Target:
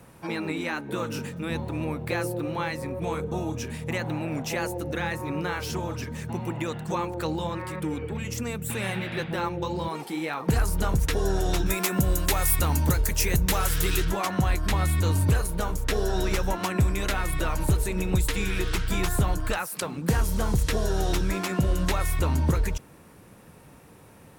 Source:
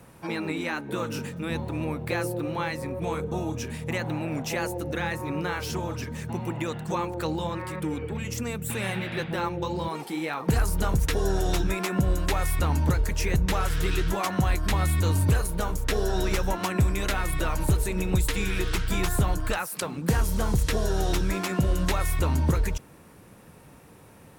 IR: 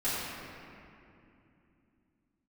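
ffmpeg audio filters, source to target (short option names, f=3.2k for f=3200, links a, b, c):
-filter_complex "[0:a]asettb=1/sr,asplit=3[a][b][c];[a]atrim=end=11.664[d];[b]atrim=start=11.66:end=14.05,asetpts=PTS-STARTPTS,afade=t=in:d=0.004:c=qsin,afade=t=out:st=2.386:d=0.004:c=qsin,aemphasis=mode=production:type=50kf[e];[c]atrim=start=14.046[f];[d][e]acrossfade=d=0.004:c1=hsin:c2=qsin[g];[g][f]acrossfade=d=0.004:c1=qsin:c2=hsin"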